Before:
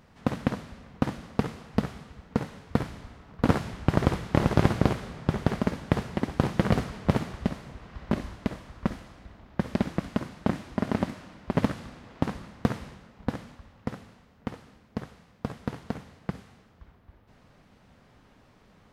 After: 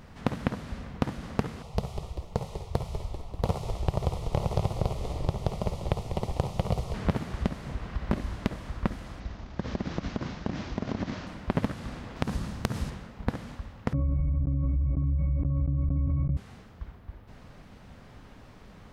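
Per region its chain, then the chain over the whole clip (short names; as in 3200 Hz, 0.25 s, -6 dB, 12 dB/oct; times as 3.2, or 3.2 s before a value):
1.62–6.94 fixed phaser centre 670 Hz, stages 4 + frequency-shifting echo 0.195 s, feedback 57%, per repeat -60 Hz, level -13 dB
9.2–11.27 CVSD 32 kbps + compressor 4:1, threshold -32 dBFS
12.16–12.9 tone controls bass +5 dB, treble +7 dB + notch 2100 Hz, Q 26 + compressor 3:1, threshold -27 dBFS
13.93–16.37 tilt -4 dB/oct + octave resonator C#, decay 0.29 s + fast leveller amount 100%
whole clip: low shelf 81 Hz +8.5 dB; compressor 3:1, threshold -32 dBFS; gain +6 dB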